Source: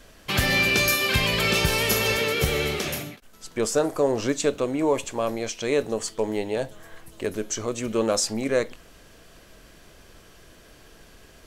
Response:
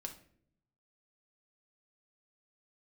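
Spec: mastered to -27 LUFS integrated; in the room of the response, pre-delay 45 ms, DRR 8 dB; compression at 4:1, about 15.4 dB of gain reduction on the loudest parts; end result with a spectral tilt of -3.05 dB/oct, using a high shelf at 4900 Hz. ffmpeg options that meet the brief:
-filter_complex "[0:a]highshelf=f=4.9k:g=8.5,acompressor=threshold=-35dB:ratio=4,asplit=2[a][b];[1:a]atrim=start_sample=2205,adelay=45[c];[b][c]afir=irnorm=-1:irlink=0,volume=-5dB[d];[a][d]amix=inputs=2:normalize=0,volume=7.5dB"

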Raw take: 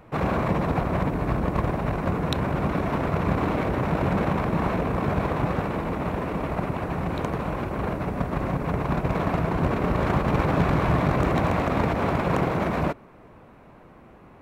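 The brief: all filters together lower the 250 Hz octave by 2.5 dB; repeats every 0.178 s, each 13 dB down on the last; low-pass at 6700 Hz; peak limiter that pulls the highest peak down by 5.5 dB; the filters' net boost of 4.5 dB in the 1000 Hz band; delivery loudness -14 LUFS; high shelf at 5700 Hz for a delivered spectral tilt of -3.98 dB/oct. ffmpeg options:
-af "lowpass=6.7k,equalizer=f=250:t=o:g=-4,equalizer=f=1k:t=o:g=6,highshelf=f=5.7k:g=-7,alimiter=limit=-14.5dB:level=0:latency=1,aecho=1:1:178|356|534:0.224|0.0493|0.0108,volume=11.5dB"

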